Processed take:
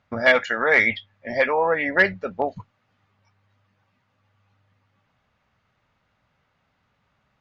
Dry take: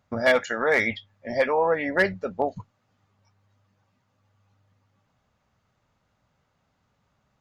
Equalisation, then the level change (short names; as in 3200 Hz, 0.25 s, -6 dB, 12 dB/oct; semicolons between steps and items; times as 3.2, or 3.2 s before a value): LPF 5200 Hz 12 dB/oct; bell 2200 Hz +6.5 dB 1.8 oct; 0.0 dB